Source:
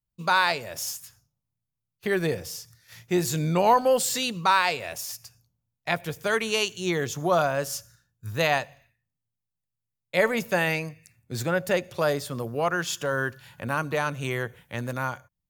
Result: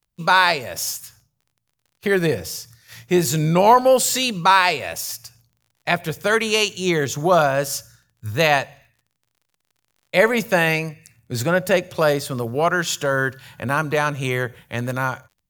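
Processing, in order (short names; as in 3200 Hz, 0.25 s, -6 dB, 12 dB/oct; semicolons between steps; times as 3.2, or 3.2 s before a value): crackle 44/s -52 dBFS; gain +6.5 dB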